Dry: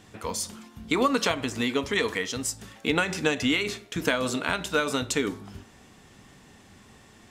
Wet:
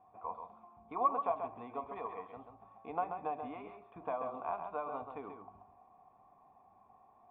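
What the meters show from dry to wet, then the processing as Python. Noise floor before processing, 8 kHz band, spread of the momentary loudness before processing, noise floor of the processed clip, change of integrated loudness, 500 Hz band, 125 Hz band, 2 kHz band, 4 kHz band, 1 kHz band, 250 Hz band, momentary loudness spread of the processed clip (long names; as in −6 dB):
−54 dBFS, below −40 dB, 8 LU, −65 dBFS, −12.5 dB, −12.5 dB, −23.0 dB, −27.5 dB, below −40 dB, −4.0 dB, −21.5 dB, 19 LU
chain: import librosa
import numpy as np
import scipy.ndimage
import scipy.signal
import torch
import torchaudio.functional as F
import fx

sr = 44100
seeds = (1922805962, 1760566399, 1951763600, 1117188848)

y = fx.formant_cascade(x, sr, vowel='a')
y = y + 10.0 ** (-7.0 / 20.0) * np.pad(y, (int(134 * sr / 1000.0), 0))[:len(y)]
y = y * librosa.db_to_amplitude(4.0)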